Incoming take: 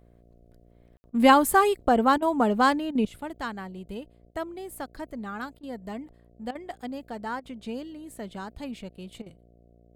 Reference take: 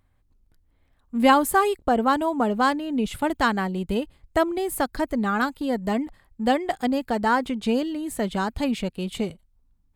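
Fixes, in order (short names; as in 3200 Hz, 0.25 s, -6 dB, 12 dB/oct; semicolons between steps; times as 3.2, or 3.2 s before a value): de-hum 58.6 Hz, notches 12; room tone fill 0.97–1.04; interpolate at 1.1/2.18/2.91/4.31/5.59/6.51/7.4/9.22, 41 ms; gain correction +12 dB, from 3.05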